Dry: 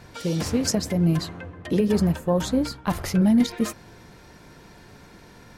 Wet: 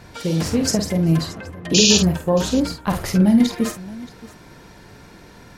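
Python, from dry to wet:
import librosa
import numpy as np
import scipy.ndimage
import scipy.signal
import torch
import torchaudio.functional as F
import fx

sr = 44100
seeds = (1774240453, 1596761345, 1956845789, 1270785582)

y = fx.spec_paint(x, sr, seeds[0], shape='noise', start_s=1.74, length_s=0.24, low_hz=2400.0, high_hz=7200.0, level_db=-19.0)
y = fx.echo_multitap(y, sr, ms=(49, 625), db=(-7.5, -19.5))
y = F.gain(torch.from_numpy(y), 3.0).numpy()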